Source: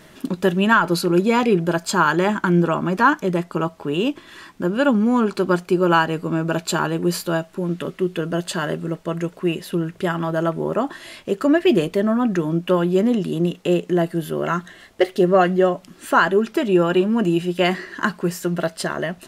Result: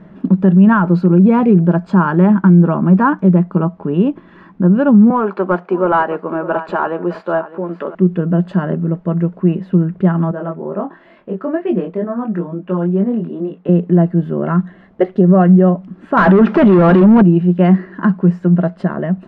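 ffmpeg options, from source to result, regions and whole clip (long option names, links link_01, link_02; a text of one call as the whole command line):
ffmpeg -i in.wav -filter_complex "[0:a]asettb=1/sr,asplit=3[link_01][link_02][link_03];[link_01]atrim=end=5.104[link_04];[link_02]atrim=start=5.1:end=7.95,asetpts=PTS-STARTPTS,afade=type=in:duration=0.004:curve=qsin,afade=type=out:start_time=2.846:duration=0.004:curve=qsin,highpass=440,aecho=1:1:608:0.15,atrim=end_sample=125685,asplit=2[link_05][link_06];[link_06]highpass=frequency=720:poles=1,volume=15dB,asoftclip=type=tanh:threshold=-3.5dB[link_07];[link_05][link_07]amix=inputs=2:normalize=0,lowpass=frequency=1600:poles=1,volume=-6dB[link_08];[link_03]atrim=start=7.946[link_09];[link_04][link_08]acrossfade=duration=0.004:curve1=hsin:curve2=qsin[link_10];[link_10][link_09]acrossfade=duration=0.004:curve1=qsin:curve2=hsin,asettb=1/sr,asplit=3[link_11][link_12][link_13];[link_11]atrim=end=10.314[link_14];[link_12]atrim=start=10.31:end=13.69,asetpts=PTS-STARTPTS,afade=type=in:duration=0.004:curve=qsin,afade=type=out:start_time=3.376:duration=0.004:curve=qsin,flanger=delay=20:depth=3.6:speed=2.2,bass=frequency=250:gain=-11,treble=frequency=4000:gain=-5[link_15];[link_13]atrim=start=13.686[link_16];[link_14][link_15]acrossfade=duration=0.004:curve1=hsin:curve2=qsin[link_17];[link_17][link_16]acrossfade=duration=0.004:curve1=qsin:curve2=hsin,asettb=1/sr,asplit=3[link_18][link_19][link_20];[link_18]atrim=end=16.174[link_21];[link_19]atrim=start=16.17:end=17.22,asetpts=PTS-STARTPTS,afade=type=in:duration=0.004:curve=qsin,afade=type=out:start_time=1.046:duration=0.004:curve=qsin,acrossover=split=5200[link_22][link_23];[link_23]acompressor=threshold=-51dB:ratio=4:attack=1:release=60[link_24];[link_22][link_24]amix=inputs=2:normalize=0,asplit=2[link_25][link_26];[link_26]highpass=frequency=720:poles=1,volume=28dB,asoftclip=type=tanh:threshold=-5dB[link_27];[link_25][link_27]amix=inputs=2:normalize=0,lowpass=frequency=6600:poles=1,volume=-6dB[link_28];[link_20]atrim=start=17.216[link_29];[link_21][link_28]acrossfade=duration=0.004:curve1=hsin:curve2=qsin[link_30];[link_30][link_29]acrossfade=duration=0.004:curve1=qsin:curve2=hsin,lowpass=1200,equalizer=frequency=190:width=3.2:gain=15,alimiter=level_in=4dB:limit=-1dB:release=50:level=0:latency=1,volume=-1dB" out.wav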